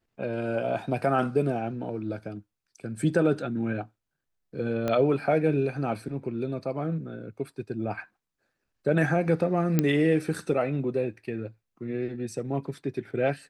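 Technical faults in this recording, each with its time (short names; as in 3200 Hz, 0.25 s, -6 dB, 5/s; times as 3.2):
4.88 pop -15 dBFS
9.79 pop -9 dBFS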